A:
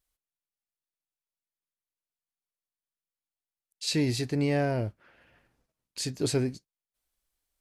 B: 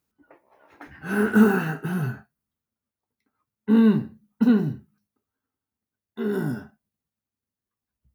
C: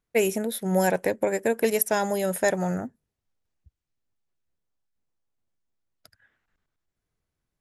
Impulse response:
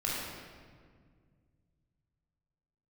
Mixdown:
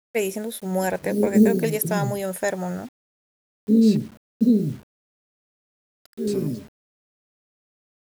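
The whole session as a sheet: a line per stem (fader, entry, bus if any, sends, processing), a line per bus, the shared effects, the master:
-10.5 dB, 0.00 s, muted 3.97–6.27, no send, limiter -20 dBFS, peak gain reduction 3.5 dB; sample leveller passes 2
+1.5 dB, 0.00 s, no send, Chebyshev band-stop 610–4100 Hz, order 5
-1.5 dB, 0.00 s, no send, dry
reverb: off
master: requantised 8-bit, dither none

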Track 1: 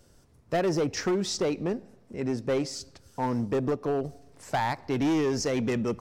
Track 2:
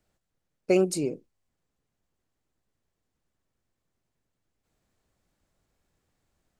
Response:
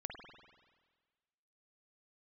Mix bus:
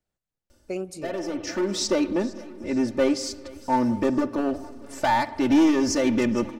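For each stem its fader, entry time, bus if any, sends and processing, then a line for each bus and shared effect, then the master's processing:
+0.5 dB, 0.50 s, send -7.5 dB, echo send -19.5 dB, comb 3.4 ms, depth 95%; auto duck -18 dB, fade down 0.25 s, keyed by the second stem
-10.5 dB, 0.00 s, send -12.5 dB, no echo send, dry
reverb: on, RT60 1.5 s, pre-delay 47 ms
echo: feedback echo 0.458 s, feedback 55%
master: dry

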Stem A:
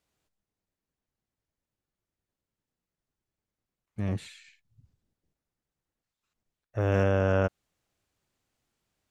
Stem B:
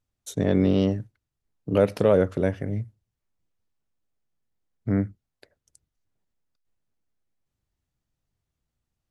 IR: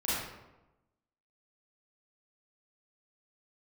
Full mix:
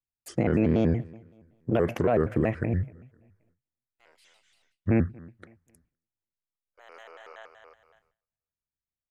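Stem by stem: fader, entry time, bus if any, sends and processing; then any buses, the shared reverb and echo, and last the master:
-13.5 dB, 0.00 s, no send, echo send -6.5 dB, Bessel high-pass 980 Hz, order 4; auto duck -24 dB, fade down 0.50 s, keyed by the second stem
+2.0 dB, 0.00 s, no send, echo send -24 dB, resonant high shelf 2700 Hz -7 dB, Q 3; limiter -16 dBFS, peak gain reduction 9 dB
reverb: off
echo: feedback echo 0.261 s, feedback 32%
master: gate with hold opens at -58 dBFS; shaped vibrato square 5.3 Hz, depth 250 cents

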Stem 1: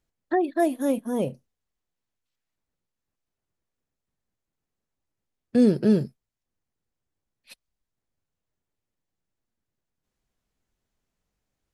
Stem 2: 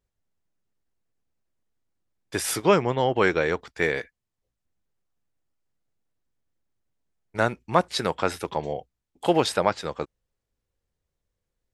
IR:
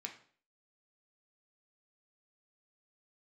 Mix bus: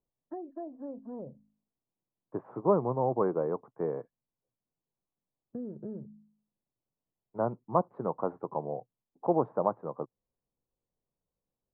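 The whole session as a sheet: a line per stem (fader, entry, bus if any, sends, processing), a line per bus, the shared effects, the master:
-11.0 dB, 0.00 s, no send, LPF 1000 Hz 24 dB/oct; de-hum 52.92 Hz, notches 5; compressor 4:1, threshold -27 dBFS, peak gain reduction 11 dB
-5.0 dB, 0.00 s, no send, Chebyshev band-pass 120–1100 Hz, order 4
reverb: off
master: dry

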